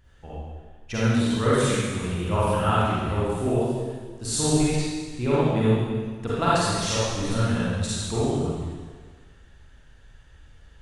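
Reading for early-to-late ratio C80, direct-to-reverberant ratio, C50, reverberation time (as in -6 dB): -2.5 dB, -10.0 dB, -6.5 dB, 1.6 s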